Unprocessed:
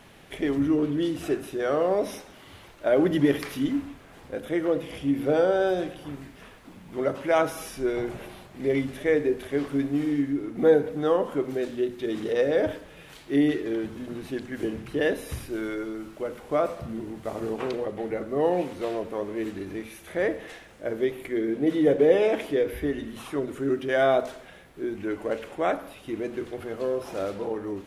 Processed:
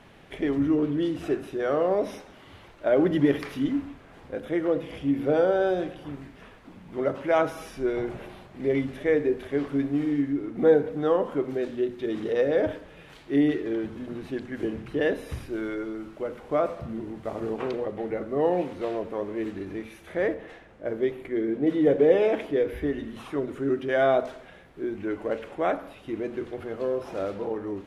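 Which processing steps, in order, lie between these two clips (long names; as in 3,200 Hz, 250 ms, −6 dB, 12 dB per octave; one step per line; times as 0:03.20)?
low-pass filter 3,000 Hz 6 dB per octave
0:20.34–0:22.70: one half of a high-frequency compander decoder only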